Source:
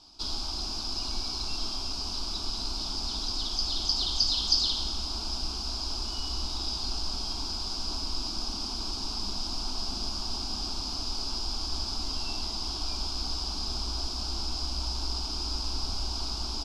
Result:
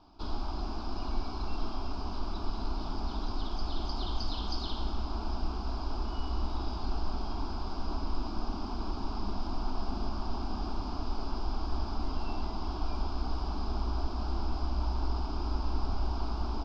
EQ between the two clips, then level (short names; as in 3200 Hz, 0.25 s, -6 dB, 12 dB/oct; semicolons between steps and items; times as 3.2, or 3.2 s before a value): LPF 1500 Hz 12 dB/oct; +3.5 dB